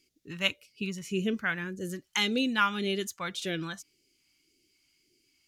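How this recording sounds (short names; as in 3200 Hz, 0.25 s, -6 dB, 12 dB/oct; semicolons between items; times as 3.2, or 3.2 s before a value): phasing stages 2, 1.8 Hz, lowest notch 400–1000 Hz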